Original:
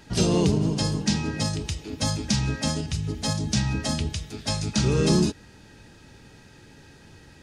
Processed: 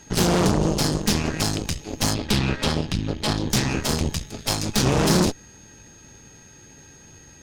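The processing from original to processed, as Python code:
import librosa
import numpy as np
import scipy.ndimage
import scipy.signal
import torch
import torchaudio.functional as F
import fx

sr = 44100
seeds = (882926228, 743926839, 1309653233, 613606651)

y = x + 10.0 ** (-49.0 / 20.0) * np.sin(2.0 * np.pi * 6500.0 * np.arange(len(x)) / sr)
y = fx.high_shelf_res(y, sr, hz=5400.0, db=-12.0, q=1.5, at=(2.14, 3.5))
y = fx.cheby_harmonics(y, sr, harmonics=(8,), levels_db=(-11,), full_scale_db=-9.0)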